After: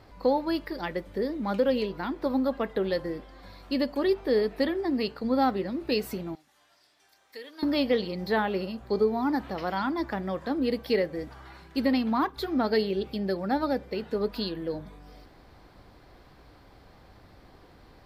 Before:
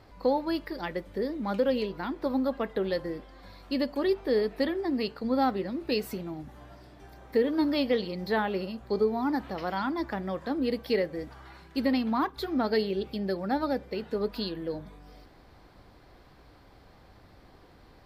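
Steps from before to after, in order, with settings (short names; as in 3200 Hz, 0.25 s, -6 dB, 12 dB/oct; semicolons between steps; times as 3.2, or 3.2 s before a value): 6.35–7.63 band-pass 7100 Hz, Q 0.63; gain +1.5 dB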